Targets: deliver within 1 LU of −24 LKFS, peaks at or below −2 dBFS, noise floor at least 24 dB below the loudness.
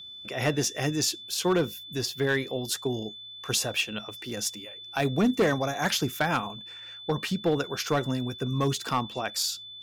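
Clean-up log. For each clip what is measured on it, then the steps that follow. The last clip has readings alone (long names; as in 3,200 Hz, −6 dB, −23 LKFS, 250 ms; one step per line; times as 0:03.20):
share of clipped samples 0.5%; peaks flattened at −17.5 dBFS; interfering tone 3,500 Hz; level of the tone −41 dBFS; integrated loudness −28.5 LKFS; sample peak −17.5 dBFS; target loudness −24.0 LKFS
→ clipped peaks rebuilt −17.5 dBFS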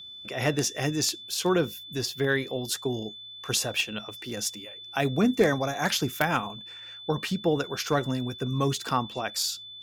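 share of clipped samples 0.0%; interfering tone 3,500 Hz; level of the tone −41 dBFS
→ notch filter 3,500 Hz, Q 30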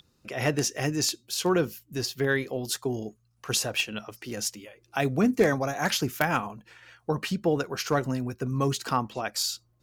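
interfering tone none found; integrated loudness −28.0 LKFS; sample peak −8.5 dBFS; target loudness −24.0 LKFS
→ level +4 dB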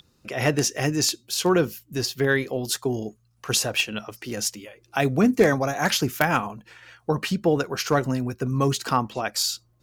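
integrated loudness −24.0 LKFS; sample peak −4.5 dBFS; background noise floor −64 dBFS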